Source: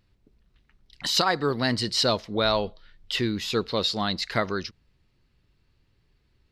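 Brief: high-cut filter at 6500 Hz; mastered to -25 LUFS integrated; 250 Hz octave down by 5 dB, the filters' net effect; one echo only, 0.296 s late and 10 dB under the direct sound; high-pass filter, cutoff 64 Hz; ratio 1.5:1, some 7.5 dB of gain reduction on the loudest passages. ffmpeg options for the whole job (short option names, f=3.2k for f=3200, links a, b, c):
-af "highpass=64,lowpass=6.5k,equalizer=f=250:t=o:g=-6.5,acompressor=threshold=-40dB:ratio=1.5,aecho=1:1:296:0.316,volume=8dB"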